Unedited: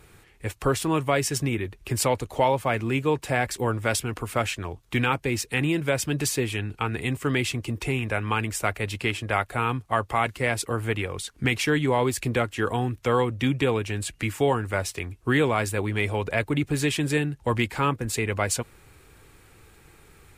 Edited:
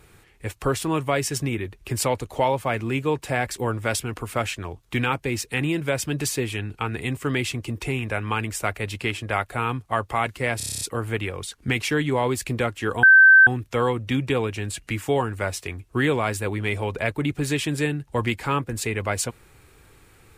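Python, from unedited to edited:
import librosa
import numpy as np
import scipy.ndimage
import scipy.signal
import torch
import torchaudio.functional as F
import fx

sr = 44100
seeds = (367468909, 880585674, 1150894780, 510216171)

y = fx.edit(x, sr, fx.stutter(start_s=10.57, slice_s=0.03, count=9),
    fx.insert_tone(at_s=12.79, length_s=0.44, hz=1550.0, db=-8.0), tone=tone)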